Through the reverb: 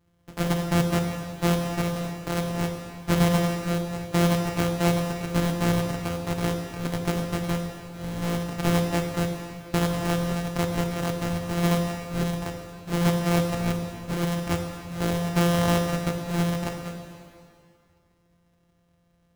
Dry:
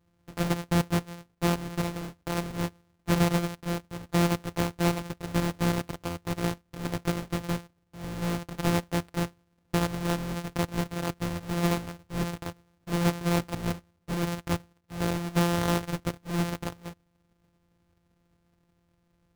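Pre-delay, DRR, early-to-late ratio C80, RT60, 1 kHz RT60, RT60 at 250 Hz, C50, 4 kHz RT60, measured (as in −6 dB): 6 ms, 3.0 dB, 5.5 dB, 2.3 s, 2.3 s, 2.3 s, 4.5 dB, 2.1 s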